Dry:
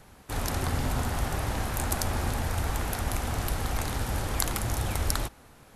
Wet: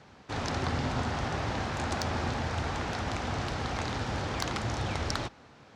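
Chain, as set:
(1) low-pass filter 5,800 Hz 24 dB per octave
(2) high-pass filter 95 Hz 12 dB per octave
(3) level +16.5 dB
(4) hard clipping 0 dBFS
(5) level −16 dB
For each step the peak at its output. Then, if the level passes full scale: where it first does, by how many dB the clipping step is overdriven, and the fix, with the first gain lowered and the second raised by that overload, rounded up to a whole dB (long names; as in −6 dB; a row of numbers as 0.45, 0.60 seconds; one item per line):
−9.5, −10.0, +6.5, 0.0, −16.0 dBFS
step 3, 6.5 dB
step 3 +9.5 dB, step 5 −9 dB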